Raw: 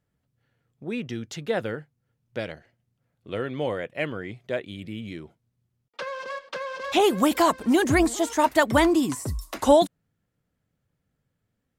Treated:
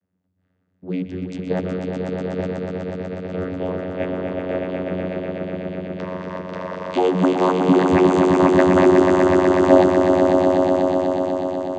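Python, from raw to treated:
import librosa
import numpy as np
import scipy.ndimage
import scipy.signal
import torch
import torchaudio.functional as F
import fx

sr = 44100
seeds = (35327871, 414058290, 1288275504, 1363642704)

y = fx.echo_swell(x, sr, ms=123, loudest=5, wet_db=-5.5)
y = fx.vocoder(y, sr, bands=16, carrier='saw', carrier_hz=91.5)
y = y * librosa.db_to_amplitude(3.0)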